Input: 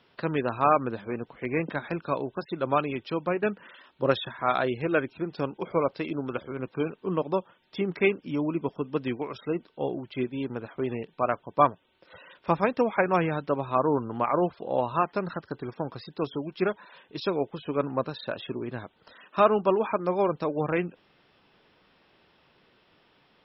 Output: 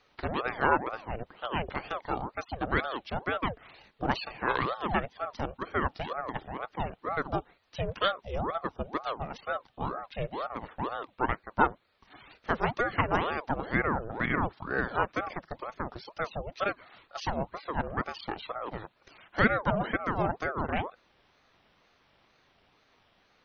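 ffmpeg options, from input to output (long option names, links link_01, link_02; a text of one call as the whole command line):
ffmpeg -i in.wav -filter_complex "[0:a]acrossover=split=660[link_01][link_02];[link_01]asoftclip=type=tanh:threshold=-21.5dB[link_03];[link_03][link_02]amix=inputs=2:normalize=0,aeval=exprs='val(0)*sin(2*PI*610*n/s+610*0.65/2.1*sin(2*PI*2.1*n/s))':channel_layout=same" out.wav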